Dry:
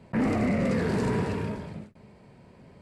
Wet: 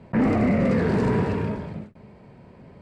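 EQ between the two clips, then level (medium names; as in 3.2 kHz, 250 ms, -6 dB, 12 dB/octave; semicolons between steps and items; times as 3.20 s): low-pass 2.4 kHz 6 dB/octave; +5.0 dB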